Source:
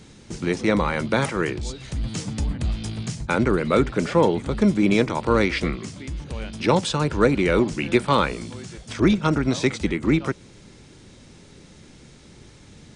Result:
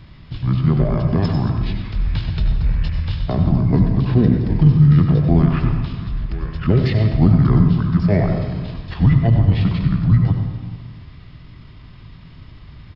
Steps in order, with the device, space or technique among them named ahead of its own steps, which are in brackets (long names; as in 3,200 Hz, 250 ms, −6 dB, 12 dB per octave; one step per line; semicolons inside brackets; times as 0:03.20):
dynamic equaliser 2,200 Hz, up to −5 dB, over −36 dBFS, Q 0.71
0:04.40–0:04.96: double-tracking delay 43 ms −7 dB
monster voice (pitch shifter −5.5 semitones; formants moved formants −5 semitones; low-shelf EQ 200 Hz +8 dB; single-tap delay 95 ms −11 dB; convolution reverb RT60 1.5 s, pre-delay 70 ms, DRR 5.5 dB)